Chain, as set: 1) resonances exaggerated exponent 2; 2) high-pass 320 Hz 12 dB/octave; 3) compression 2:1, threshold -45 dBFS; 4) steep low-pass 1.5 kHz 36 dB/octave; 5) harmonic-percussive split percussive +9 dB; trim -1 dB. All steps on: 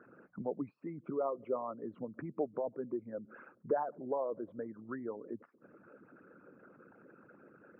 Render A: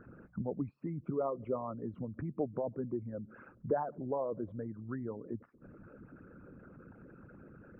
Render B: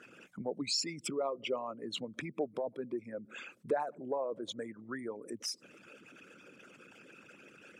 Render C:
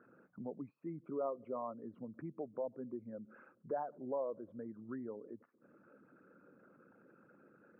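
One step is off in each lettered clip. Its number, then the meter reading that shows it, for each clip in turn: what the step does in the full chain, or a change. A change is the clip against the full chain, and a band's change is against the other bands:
2, 125 Hz band +10.5 dB; 4, 2 kHz band +8.5 dB; 5, 2 kHz band -3.5 dB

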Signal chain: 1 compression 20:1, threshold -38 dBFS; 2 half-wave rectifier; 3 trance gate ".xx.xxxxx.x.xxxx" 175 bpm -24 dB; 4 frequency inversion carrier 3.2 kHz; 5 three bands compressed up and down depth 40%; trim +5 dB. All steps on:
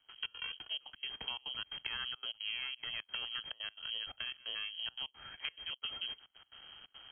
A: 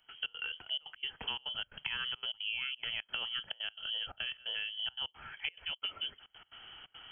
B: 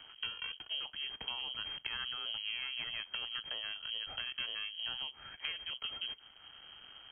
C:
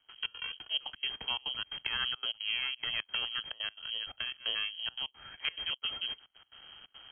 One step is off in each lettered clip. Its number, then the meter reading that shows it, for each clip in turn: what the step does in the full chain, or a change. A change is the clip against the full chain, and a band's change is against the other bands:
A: 2, momentary loudness spread change +1 LU; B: 3, loudness change +1.5 LU; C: 1, mean gain reduction 3.5 dB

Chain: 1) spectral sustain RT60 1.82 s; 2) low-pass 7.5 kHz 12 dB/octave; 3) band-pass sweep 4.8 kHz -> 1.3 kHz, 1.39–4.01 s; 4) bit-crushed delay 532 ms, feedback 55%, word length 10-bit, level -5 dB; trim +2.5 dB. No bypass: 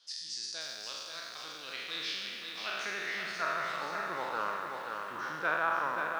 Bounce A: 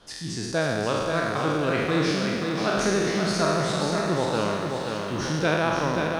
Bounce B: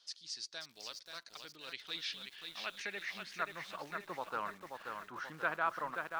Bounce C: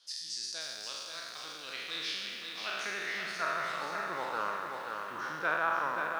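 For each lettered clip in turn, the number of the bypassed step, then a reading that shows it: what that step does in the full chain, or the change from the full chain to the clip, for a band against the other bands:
3, 125 Hz band +20.0 dB; 1, 125 Hz band +3.5 dB; 2, 8 kHz band +1.5 dB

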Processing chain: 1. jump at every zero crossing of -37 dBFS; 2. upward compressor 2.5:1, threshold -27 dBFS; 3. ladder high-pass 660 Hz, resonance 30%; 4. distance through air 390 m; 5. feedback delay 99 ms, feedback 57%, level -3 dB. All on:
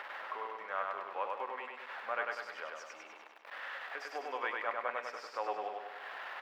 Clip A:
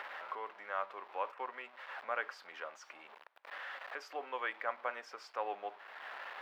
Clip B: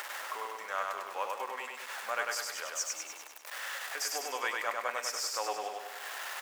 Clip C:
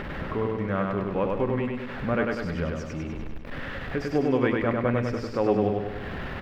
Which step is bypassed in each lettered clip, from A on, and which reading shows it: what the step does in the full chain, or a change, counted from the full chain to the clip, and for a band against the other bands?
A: 5, echo-to-direct -1.5 dB to none; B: 4, 8 kHz band +24.0 dB; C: 3, 250 Hz band +26.5 dB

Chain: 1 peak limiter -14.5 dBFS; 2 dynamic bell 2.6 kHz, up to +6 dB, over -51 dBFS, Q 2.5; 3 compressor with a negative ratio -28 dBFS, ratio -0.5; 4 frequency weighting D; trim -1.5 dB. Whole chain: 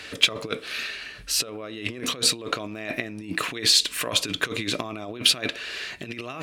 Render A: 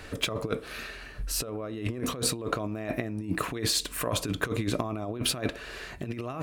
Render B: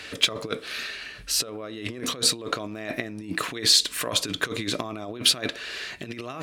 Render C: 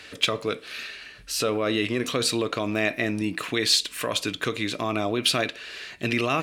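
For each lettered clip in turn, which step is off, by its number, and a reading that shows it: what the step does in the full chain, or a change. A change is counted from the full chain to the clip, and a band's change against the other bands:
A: 4, 4 kHz band -10.5 dB; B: 2, momentary loudness spread change +2 LU; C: 3, crest factor change -5.5 dB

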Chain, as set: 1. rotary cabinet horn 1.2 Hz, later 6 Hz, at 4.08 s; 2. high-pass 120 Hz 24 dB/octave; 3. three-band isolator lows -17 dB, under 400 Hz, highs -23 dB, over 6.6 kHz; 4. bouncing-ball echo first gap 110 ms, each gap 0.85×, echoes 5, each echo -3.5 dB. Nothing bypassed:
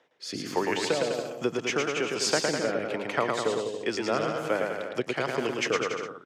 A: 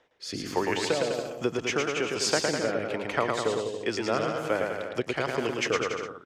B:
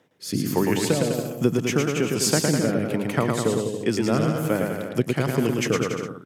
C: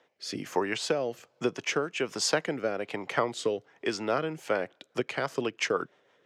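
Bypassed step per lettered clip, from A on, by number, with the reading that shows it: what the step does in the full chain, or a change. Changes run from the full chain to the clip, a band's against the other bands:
2, 125 Hz band +2.0 dB; 3, 125 Hz band +13.5 dB; 4, loudness change -2.5 LU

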